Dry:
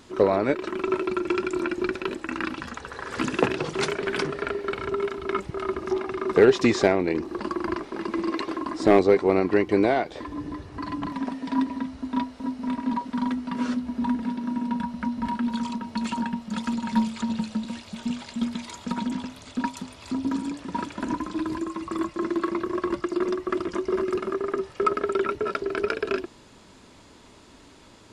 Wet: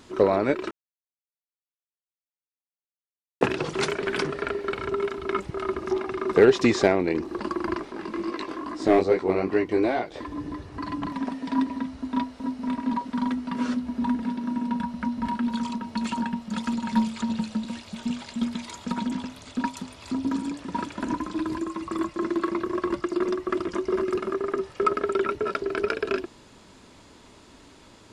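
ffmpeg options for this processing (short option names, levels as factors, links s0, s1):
-filter_complex "[0:a]asettb=1/sr,asplit=3[s0][s1][s2];[s0]atrim=end=7.924[s3];[s1]atrim=start=7.92:end=10.14,asetpts=PTS-STARTPTS,afade=t=in:d=0.004:c=qsin,afade=t=out:st=2.216:d=0.004:c=qsin,flanger=delay=16.5:depth=6.5:speed=2.4[s4];[s2]atrim=start=10.136[s5];[s3][s4]acrossfade=d=0.004:c1=hsin:c2=qsin[s6];[s6][s5]acrossfade=d=0.004:c1=qsin:c2=hsin,asplit=3[s7][s8][s9];[s7]atrim=end=0.71,asetpts=PTS-STARTPTS,afade=t=out:st=0.706:d=0.004:c=hsin[s10];[s8]atrim=start=0.71:end=3.41,asetpts=PTS-STARTPTS,volume=0[s11];[s9]atrim=start=3.41,asetpts=PTS-STARTPTS,afade=t=in:d=0.004:c=hsin[s12];[s10][s11][s12]concat=n=3:v=0:a=1"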